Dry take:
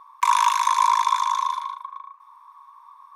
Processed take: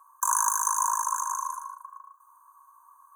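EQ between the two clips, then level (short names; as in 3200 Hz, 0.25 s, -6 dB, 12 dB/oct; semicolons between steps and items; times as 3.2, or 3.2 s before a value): HPF 1000 Hz 6 dB/oct; brick-wall FIR band-stop 1700–6000 Hz; tilt +5 dB/oct; -6.0 dB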